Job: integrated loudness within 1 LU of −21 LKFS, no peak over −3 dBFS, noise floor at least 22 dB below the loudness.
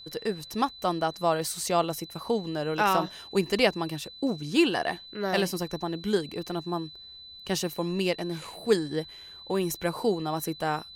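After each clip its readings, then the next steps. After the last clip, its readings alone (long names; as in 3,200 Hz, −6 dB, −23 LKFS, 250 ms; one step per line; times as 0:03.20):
interfering tone 4,000 Hz; level of the tone −44 dBFS; integrated loudness −28.5 LKFS; sample peak −8.5 dBFS; target loudness −21.0 LKFS
→ notch filter 4,000 Hz, Q 30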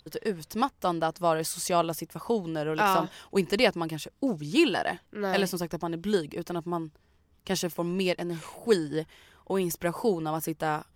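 interfering tone none found; integrated loudness −29.0 LKFS; sample peak −8.5 dBFS; target loudness −21.0 LKFS
→ level +8 dB
brickwall limiter −3 dBFS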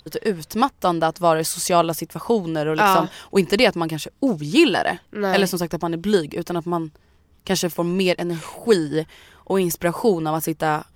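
integrated loudness −21.0 LKFS; sample peak −3.0 dBFS; background noise floor −56 dBFS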